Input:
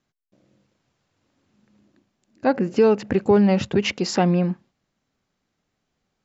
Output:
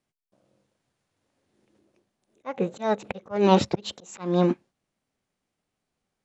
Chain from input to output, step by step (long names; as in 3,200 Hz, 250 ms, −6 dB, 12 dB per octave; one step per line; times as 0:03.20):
formants moved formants +6 semitones
volume swells 315 ms
expander for the loud parts 1.5 to 1, over −39 dBFS
level +4.5 dB